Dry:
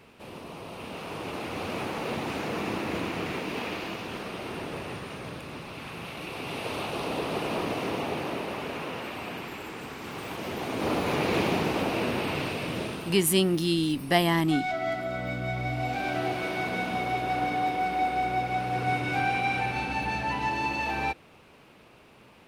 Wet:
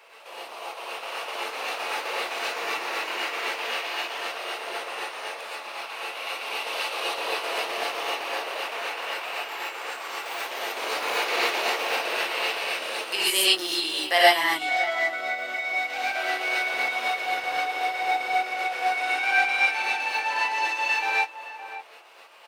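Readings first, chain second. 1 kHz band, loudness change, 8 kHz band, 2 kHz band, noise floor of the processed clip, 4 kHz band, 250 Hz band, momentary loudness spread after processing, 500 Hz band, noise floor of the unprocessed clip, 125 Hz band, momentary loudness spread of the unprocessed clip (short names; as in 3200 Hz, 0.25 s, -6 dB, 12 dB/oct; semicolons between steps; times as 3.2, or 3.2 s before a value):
+2.5 dB, +4.0 dB, +4.0 dB, +8.0 dB, -41 dBFS, +8.5 dB, -13.0 dB, 12 LU, -0.5 dB, -54 dBFS, under -30 dB, 13 LU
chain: HPF 560 Hz 24 dB/oct; bell 11000 Hz -7 dB 0.22 oct; chopper 3.9 Hz, depth 60%, duty 30%; outdoor echo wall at 97 m, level -14 dB; dynamic EQ 760 Hz, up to -5 dB, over -43 dBFS, Q 0.93; non-linear reverb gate 0.16 s rising, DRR -7 dB; gain +3.5 dB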